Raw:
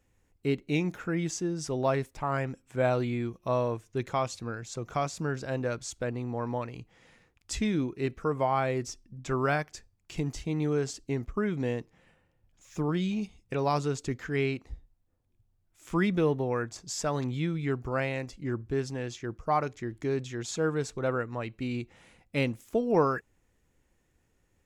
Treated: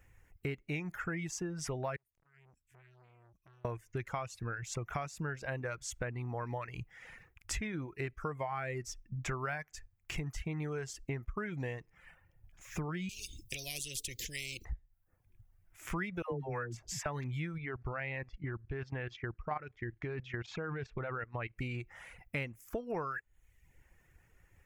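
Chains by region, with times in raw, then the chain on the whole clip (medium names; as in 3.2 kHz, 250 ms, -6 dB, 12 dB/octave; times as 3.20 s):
1.96–3.65 s: amplifier tone stack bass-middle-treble 6-0-2 + compression 8:1, threshold -57 dBFS + transformer saturation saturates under 1 kHz
13.09–14.65 s: elliptic band-stop 320–3800 Hz, stop band 60 dB + spectrum-flattening compressor 10:1
16.22–17.06 s: treble shelf 2.3 kHz -6.5 dB + phase dispersion lows, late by 97 ms, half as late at 630 Hz
17.58–21.57 s: low-pass 4.1 kHz 24 dB/octave + level held to a coarse grid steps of 12 dB
whole clip: reverb removal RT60 0.63 s; graphic EQ 250/500/1000/2000/4000/8000 Hz -11/-5/-3/+5/-11/-6 dB; compression 6:1, threshold -45 dBFS; trim +9.5 dB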